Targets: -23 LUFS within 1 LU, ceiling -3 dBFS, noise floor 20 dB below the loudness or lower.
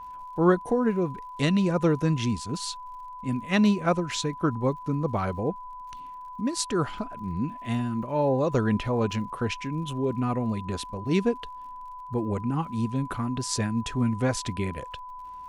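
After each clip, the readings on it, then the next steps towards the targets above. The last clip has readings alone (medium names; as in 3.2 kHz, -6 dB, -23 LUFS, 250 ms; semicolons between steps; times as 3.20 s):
tick rate 57 per s; steady tone 1 kHz; tone level -38 dBFS; loudness -27.5 LUFS; peak level -9.0 dBFS; loudness target -23.0 LUFS
-> de-click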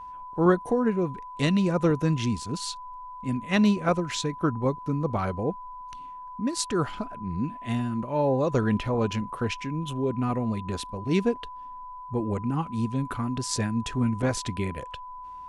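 tick rate 0.32 per s; steady tone 1 kHz; tone level -38 dBFS
-> band-stop 1 kHz, Q 30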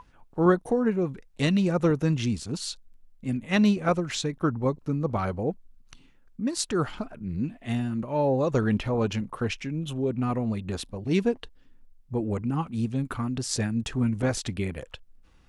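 steady tone not found; loudness -27.5 LUFS; peak level -9.0 dBFS; loudness target -23.0 LUFS
-> trim +4.5 dB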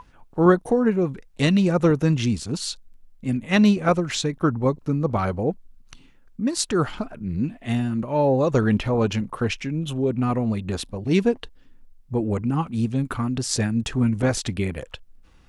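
loudness -23.0 LUFS; peak level -4.5 dBFS; noise floor -52 dBFS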